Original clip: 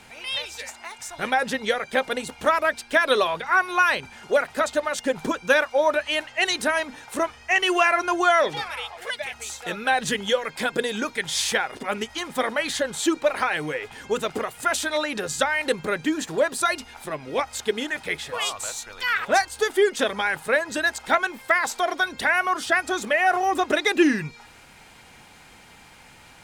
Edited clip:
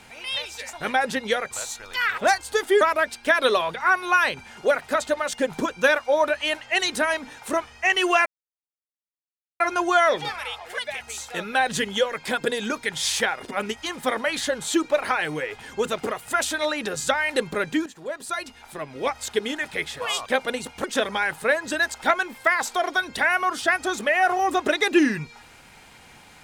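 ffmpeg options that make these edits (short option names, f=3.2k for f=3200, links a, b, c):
-filter_complex "[0:a]asplit=8[a][b][c][d][e][f][g][h];[a]atrim=end=0.732[i];[b]atrim=start=1.108:end=1.892[j];[c]atrim=start=18.578:end=19.882[k];[d]atrim=start=2.468:end=7.92,asetpts=PTS-STARTPTS,afade=t=out:st=5.448:d=0.004:c=hsin,apad=pad_dur=1.34[l];[e]atrim=start=7.92:end=16.18,asetpts=PTS-STARTPTS,afade=t=in:d=0.004:c=hsin,afade=t=out:st=8.256:d=0.004:c=hsin:silence=0.158489[m];[f]atrim=start=16.18:end=18.582,asetpts=PTS-STARTPTS,afade=t=in:d=1.33:silence=0.158489[n];[g]atrim=start=1.888:end=2.472[o];[h]atrim=start=19.878[p];[i][j]acrossfade=d=0.004:c1=hsin:c2=hsin[q];[q][k]acrossfade=d=0.004:c1=hsin:c2=hsin[r];[l][m][n]concat=n=3:v=0:a=1[s];[r][s]acrossfade=d=0.004:c1=hsin:c2=hsin[t];[t][o]acrossfade=d=0.004:c1=hsin:c2=hsin[u];[u][p]acrossfade=d=0.004:c1=hsin:c2=hsin"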